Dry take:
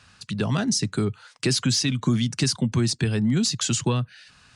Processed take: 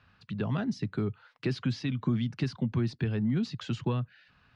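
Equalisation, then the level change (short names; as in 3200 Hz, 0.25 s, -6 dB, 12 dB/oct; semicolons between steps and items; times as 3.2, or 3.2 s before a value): air absorption 340 m; -6.0 dB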